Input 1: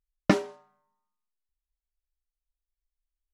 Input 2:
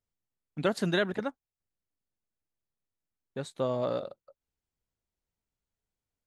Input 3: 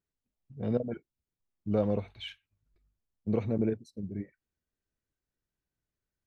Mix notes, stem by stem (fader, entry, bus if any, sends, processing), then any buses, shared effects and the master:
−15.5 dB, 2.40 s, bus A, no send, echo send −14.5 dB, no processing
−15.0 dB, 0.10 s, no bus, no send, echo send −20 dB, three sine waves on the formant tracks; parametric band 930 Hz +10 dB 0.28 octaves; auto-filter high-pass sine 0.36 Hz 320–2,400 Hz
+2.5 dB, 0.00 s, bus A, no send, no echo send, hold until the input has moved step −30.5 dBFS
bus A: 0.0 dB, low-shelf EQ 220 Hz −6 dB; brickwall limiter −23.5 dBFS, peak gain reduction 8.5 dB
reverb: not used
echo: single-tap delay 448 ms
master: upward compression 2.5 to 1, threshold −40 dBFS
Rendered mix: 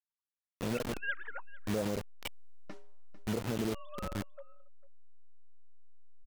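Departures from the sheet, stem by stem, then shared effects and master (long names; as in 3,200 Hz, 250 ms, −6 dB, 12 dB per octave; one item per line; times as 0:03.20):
stem 1 −15.5 dB → −26.5 dB
stem 2 −15.0 dB → −6.5 dB
master: missing upward compression 2.5 to 1, threshold −40 dBFS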